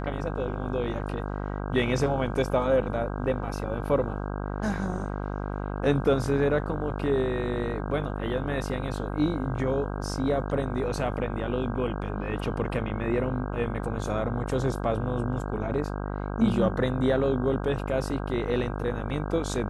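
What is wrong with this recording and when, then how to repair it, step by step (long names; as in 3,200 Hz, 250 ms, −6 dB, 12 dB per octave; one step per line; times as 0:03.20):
mains buzz 50 Hz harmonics 32 −32 dBFS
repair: hum removal 50 Hz, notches 32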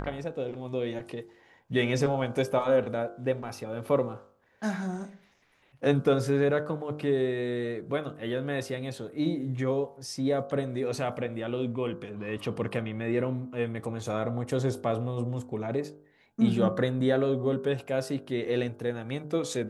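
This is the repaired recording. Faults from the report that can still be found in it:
none of them is left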